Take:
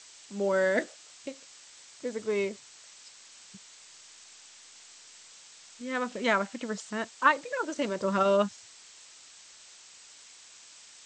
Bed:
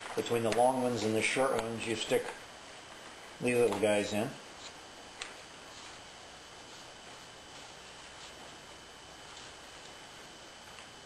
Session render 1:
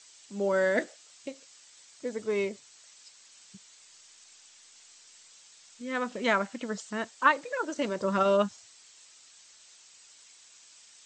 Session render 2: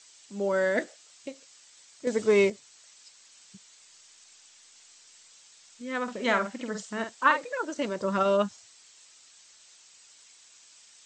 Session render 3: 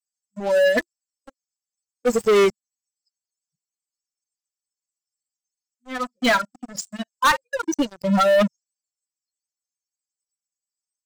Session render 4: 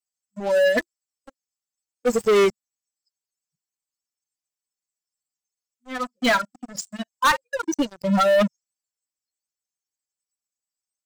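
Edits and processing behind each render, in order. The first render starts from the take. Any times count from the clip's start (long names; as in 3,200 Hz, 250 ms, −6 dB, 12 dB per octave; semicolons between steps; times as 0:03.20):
broadband denoise 6 dB, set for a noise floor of −53 dBFS
0:02.07–0:02.50: clip gain +8 dB; 0:06.03–0:07.45: double-tracking delay 49 ms −7 dB
spectral dynamics exaggerated over time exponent 3; leveller curve on the samples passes 5
level −1 dB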